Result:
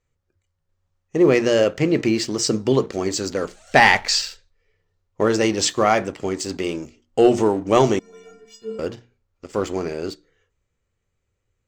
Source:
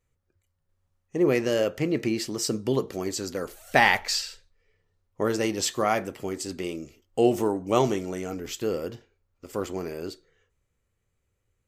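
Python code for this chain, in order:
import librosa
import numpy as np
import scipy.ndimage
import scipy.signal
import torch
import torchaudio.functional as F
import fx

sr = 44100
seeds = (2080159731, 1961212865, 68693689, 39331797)

y = scipy.signal.sosfilt(scipy.signal.butter(6, 7900.0, 'lowpass', fs=sr, output='sos'), x)
y = fx.hum_notches(y, sr, base_hz=60, count=5)
y = fx.leveller(y, sr, passes=1)
y = fx.stiff_resonator(y, sr, f0_hz=210.0, decay_s=0.71, stiffness=0.03, at=(7.99, 8.79))
y = y * librosa.db_to_amplitude(3.5)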